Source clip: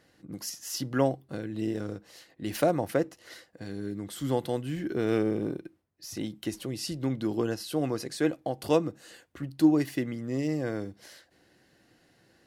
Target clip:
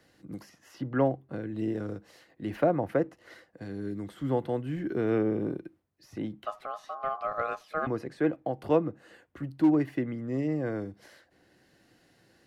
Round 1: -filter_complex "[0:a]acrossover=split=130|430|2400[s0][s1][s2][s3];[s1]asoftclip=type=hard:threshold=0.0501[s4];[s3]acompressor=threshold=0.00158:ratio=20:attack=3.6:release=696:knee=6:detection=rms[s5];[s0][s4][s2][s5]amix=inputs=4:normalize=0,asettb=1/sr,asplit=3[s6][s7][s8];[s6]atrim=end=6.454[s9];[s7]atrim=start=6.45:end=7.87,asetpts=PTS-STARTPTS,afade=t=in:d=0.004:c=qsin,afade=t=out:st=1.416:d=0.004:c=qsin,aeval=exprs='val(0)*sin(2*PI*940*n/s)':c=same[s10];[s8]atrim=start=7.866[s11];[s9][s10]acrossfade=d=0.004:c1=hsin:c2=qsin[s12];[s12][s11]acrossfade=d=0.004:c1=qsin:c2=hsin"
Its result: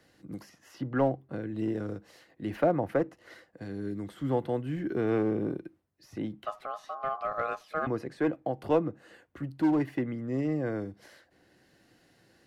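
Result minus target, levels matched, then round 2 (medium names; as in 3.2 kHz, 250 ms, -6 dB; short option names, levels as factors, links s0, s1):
hard clipper: distortion +8 dB
-filter_complex "[0:a]acrossover=split=130|430|2400[s0][s1][s2][s3];[s1]asoftclip=type=hard:threshold=0.1[s4];[s3]acompressor=threshold=0.00158:ratio=20:attack=3.6:release=696:knee=6:detection=rms[s5];[s0][s4][s2][s5]amix=inputs=4:normalize=0,asettb=1/sr,asplit=3[s6][s7][s8];[s6]atrim=end=6.454[s9];[s7]atrim=start=6.45:end=7.87,asetpts=PTS-STARTPTS,afade=t=in:d=0.004:c=qsin,afade=t=out:st=1.416:d=0.004:c=qsin,aeval=exprs='val(0)*sin(2*PI*940*n/s)':c=same[s10];[s8]atrim=start=7.866[s11];[s9][s10]acrossfade=d=0.004:c1=hsin:c2=qsin[s12];[s12][s11]acrossfade=d=0.004:c1=qsin:c2=hsin"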